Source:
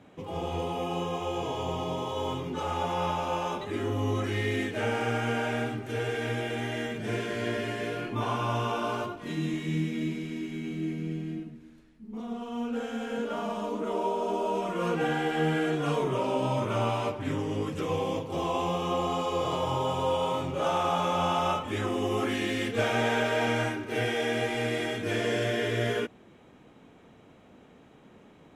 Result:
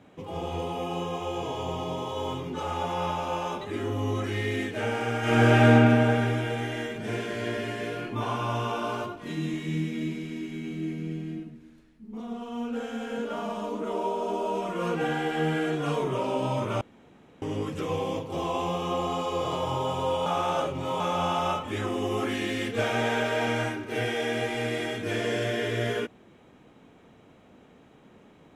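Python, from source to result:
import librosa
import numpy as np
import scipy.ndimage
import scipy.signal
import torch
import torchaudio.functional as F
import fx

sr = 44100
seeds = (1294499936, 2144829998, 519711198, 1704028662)

y = fx.reverb_throw(x, sr, start_s=5.19, length_s=0.55, rt60_s=2.9, drr_db=-10.0)
y = fx.edit(y, sr, fx.room_tone_fill(start_s=16.81, length_s=0.61),
    fx.reverse_span(start_s=20.26, length_s=0.74), tone=tone)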